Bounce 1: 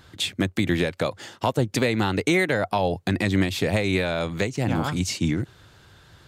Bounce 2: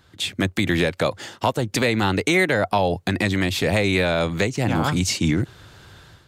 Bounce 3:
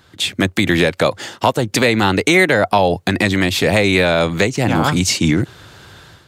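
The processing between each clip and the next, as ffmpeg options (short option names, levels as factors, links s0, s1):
-filter_complex "[0:a]acrossover=split=650[s0][s1];[s0]alimiter=limit=0.119:level=0:latency=1[s2];[s2][s1]amix=inputs=2:normalize=0,dynaudnorm=f=100:g=5:m=3.55,volume=0.562"
-af "lowshelf=f=85:g=-8,volume=2.11"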